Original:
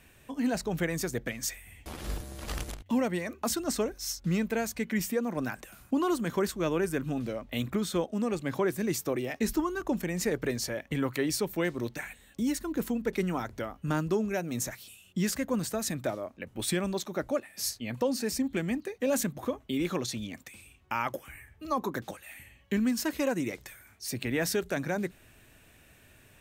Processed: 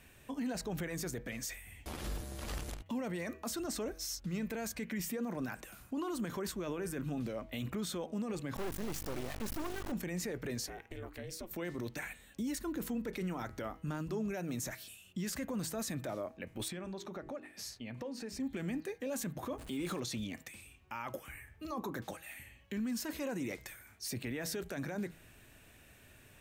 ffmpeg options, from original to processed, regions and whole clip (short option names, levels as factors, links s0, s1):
-filter_complex "[0:a]asettb=1/sr,asplit=3[s0][s1][s2];[s0]atrim=end=8.564[s3];[s1]atrim=start=8.56:end=9.92,asetpts=PTS-STARTPTS,afade=t=in:d=0.004:c=qsin,afade=t=out:st=1.356:d=0.004:c=qsin,aeval=exprs='val(0)+0.0112*(sin(2*PI*50*n/s)+sin(2*PI*2*50*n/s)/2+sin(2*PI*3*50*n/s)/3+sin(2*PI*4*50*n/s)/4+sin(2*PI*5*50*n/s)/5)':c=same,volume=18.8,asoftclip=hard,volume=0.0531,acrusher=bits=4:dc=4:mix=0:aa=0.000001[s4];[s2]atrim=start=9.916[s5];[s3][s4]acrossfade=d=0.004:c1=hsin:c2=qsin[s6];[s6][s5]acrossfade=d=0.004:c1=qsin:c2=hsin,asettb=1/sr,asplit=3[s7][s8][s9];[s7]atrim=end=10.664[s10];[s8]atrim=start=10.66:end=11.51,asetpts=PTS-STARTPTS,afade=t=in:d=0.004:c=qsin,afade=t=out:st=0.846:d=0.004:c=qsin,acompressor=threshold=0.01:ratio=3:attack=3.2:release=140:knee=1:detection=peak,aeval=exprs='val(0)*sin(2*PI*170*n/s)':c=same[s11];[s9]atrim=start=11.506[s12];[s10][s11]acrossfade=d=0.004:c1=hsin:c2=qsin[s13];[s13][s12]acrossfade=d=0.004:c1=qsin:c2=hsin,asettb=1/sr,asplit=3[s14][s15][s16];[s14]atrim=end=16.684[s17];[s15]atrim=start=16.68:end=18.4,asetpts=PTS-STARTPTS,afade=t=in:d=0.004:c=qsin,afade=t=out:st=1.716:d=0.004:c=qsin,aemphasis=mode=reproduction:type=50kf,bandreject=f=50:t=h:w=6,bandreject=f=100:t=h:w=6,bandreject=f=150:t=h:w=6,bandreject=f=200:t=h:w=6,bandreject=f=250:t=h:w=6,bandreject=f=300:t=h:w=6,bandreject=f=350:t=h:w=6,bandreject=f=400:t=h:w=6,acompressor=threshold=0.0112:ratio=4:attack=3.2:release=140:knee=1:detection=peak[s18];[s16]atrim=start=18.396[s19];[s17][s18]acrossfade=d=0.004:c1=hsin:c2=qsin[s20];[s20][s19]acrossfade=d=0.004:c1=qsin:c2=hsin,asettb=1/sr,asplit=3[s21][s22][s23];[s21]atrim=end=19.584[s24];[s22]atrim=start=19.58:end=20,asetpts=PTS-STARTPTS,afade=t=in:d=0.004:c=qsin,afade=t=out:st=0.416:d=0.004:c=qsin,aeval=exprs='val(0)+0.5*0.00708*sgn(val(0))':c=same,equalizer=f=8800:t=o:w=0.38:g=8.5,bandreject=f=5700:w=28[s25];[s23]atrim=start=19.996[s26];[s24][s25]acrossfade=d=0.004:c1=hsin:c2=qsin[s27];[s27][s26]acrossfade=d=0.004:c1=qsin:c2=hsin,alimiter=level_in=1.78:limit=0.0631:level=0:latency=1:release=21,volume=0.562,bandreject=f=161.1:t=h:w=4,bandreject=f=322.2:t=h:w=4,bandreject=f=483.3:t=h:w=4,bandreject=f=644.4:t=h:w=4,bandreject=f=805.5:t=h:w=4,bandreject=f=966.6:t=h:w=4,bandreject=f=1127.7:t=h:w=4,bandreject=f=1288.8:t=h:w=4,bandreject=f=1449.9:t=h:w=4,bandreject=f=1611:t=h:w=4,bandreject=f=1772.1:t=h:w=4,bandreject=f=1933.2:t=h:w=4,bandreject=f=2094.3:t=h:w=4,bandreject=f=2255.4:t=h:w=4,bandreject=f=2416.5:t=h:w=4,bandreject=f=2577.6:t=h:w=4,bandreject=f=2738.7:t=h:w=4,bandreject=f=2899.8:t=h:w=4,bandreject=f=3060.9:t=h:w=4,volume=0.841"